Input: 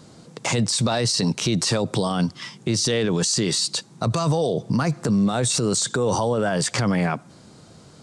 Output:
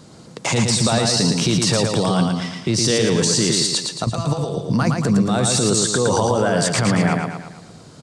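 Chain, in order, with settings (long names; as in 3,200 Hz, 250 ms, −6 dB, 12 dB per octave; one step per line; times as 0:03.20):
0:04.04–0:04.57: output level in coarse steps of 10 dB
repeating echo 113 ms, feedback 49%, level −4 dB
level +2.5 dB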